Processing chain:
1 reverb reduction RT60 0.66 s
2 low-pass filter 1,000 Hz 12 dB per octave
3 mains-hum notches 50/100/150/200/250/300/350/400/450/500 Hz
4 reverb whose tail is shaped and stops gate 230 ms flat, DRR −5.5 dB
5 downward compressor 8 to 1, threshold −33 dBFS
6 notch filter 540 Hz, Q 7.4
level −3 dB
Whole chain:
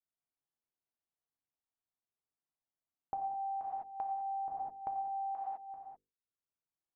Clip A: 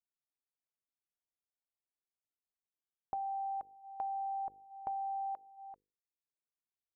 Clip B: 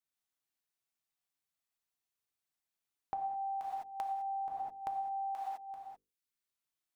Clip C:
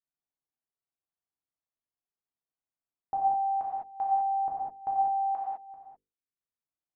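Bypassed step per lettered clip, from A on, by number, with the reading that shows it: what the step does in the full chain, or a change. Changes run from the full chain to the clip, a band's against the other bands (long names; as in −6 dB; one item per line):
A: 4, change in momentary loudness spread +7 LU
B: 2, change in crest factor +2.5 dB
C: 5, average gain reduction 6.5 dB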